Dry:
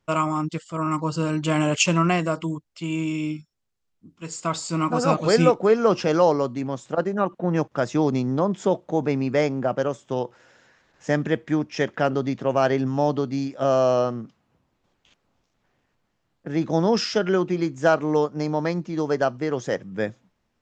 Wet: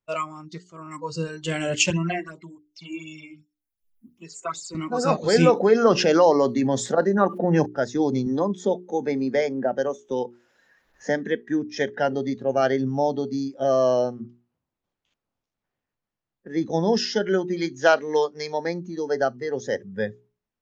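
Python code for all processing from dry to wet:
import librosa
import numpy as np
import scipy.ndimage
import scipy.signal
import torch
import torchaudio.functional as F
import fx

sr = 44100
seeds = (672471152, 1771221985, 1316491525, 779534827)

y = fx.chain(x, sr, fx.phaser_stages(stages=8, low_hz=140.0, high_hz=1600.0, hz=2.7, feedback_pct=10),
    fx.band_squash(depth_pct=40), at=(1.9, 4.75))
y = fx.chain(y, sr, fx.highpass(hz=130.0, slope=12),
    fx.env_flatten(amount_pct=50), at=(5.36, 7.66))
y = fx.chain(y, sr, fx.peak_eq(hz=110.0, db=-13.5, octaves=0.37),
    fx.band_squash(depth_pct=40), at=(8.26, 11.43))
y = fx.chain(y, sr, fx.lowpass(hz=4700.0, slope=12),
    fx.high_shelf(hz=2200.0, db=12.0), at=(17.56, 18.58))
y = fx.noise_reduce_blind(y, sr, reduce_db=15)
y = fx.hum_notches(y, sr, base_hz=60, count=7)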